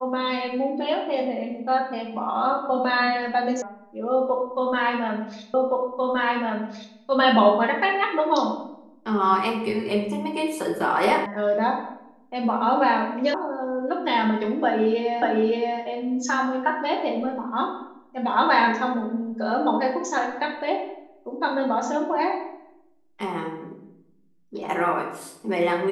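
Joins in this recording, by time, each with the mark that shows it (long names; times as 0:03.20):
0:03.62: cut off before it has died away
0:05.54: the same again, the last 1.42 s
0:11.26: cut off before it has died away
0:13.34: cut off before it has died away
0:15.22: the same again, the last 0.57 s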